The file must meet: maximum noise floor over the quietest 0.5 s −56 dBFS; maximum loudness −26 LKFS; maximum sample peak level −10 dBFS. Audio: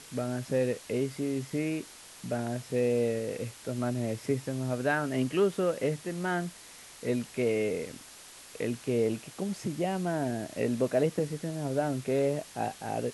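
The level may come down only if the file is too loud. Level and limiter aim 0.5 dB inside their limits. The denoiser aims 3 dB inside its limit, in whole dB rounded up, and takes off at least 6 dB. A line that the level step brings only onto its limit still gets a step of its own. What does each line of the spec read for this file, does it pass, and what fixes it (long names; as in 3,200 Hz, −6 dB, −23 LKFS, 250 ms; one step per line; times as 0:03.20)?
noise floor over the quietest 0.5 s −50 dBFS: out of spec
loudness −31.5 LKFS: in spec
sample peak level −15.0 dBFS: in spec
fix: broadband denoise 9 dB, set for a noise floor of −50 dBFS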